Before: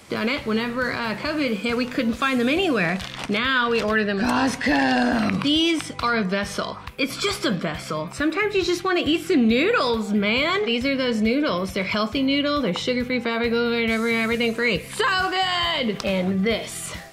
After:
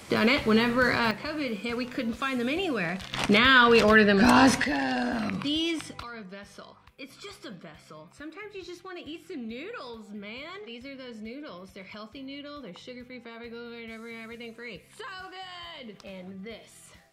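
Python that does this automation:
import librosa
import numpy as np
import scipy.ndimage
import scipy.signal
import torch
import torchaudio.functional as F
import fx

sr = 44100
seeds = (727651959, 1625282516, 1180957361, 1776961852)

y = fx.gain(x, sr, db=fx.steps((0.0, 1.0), (1.11, -8.0), (3.13, 2.5), (4.64, -8.5), (6.03, -19.5)))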